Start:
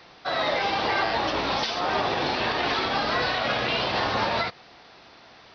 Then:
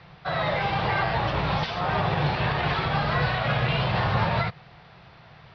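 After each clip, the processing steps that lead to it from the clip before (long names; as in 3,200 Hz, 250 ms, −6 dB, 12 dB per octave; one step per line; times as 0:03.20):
low-pass filter 3,000 Hz 12 dB per octave
low shelf with overshoot 200 Hz +9 dB, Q 3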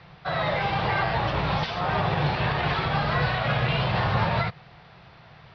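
no processing that can be heard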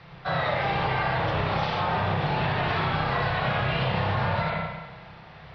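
spring reverb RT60 1.1 s, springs 31/60 ms, chirp 30 ms, DRR −1.5 dB
downward compressor, threshold −22 dBFS, peak gain reduction 6.5 dB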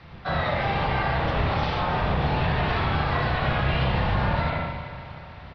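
sub-octave generator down 1 octave, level +1 dB
repeating echo 308 ms, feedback 55%, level −13.5 dB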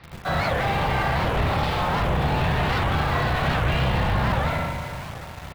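in parallel at −11.5 dB: log-companded quantiser 2 bits
on the sum: wow of a warped record 78 rpm, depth 250 cents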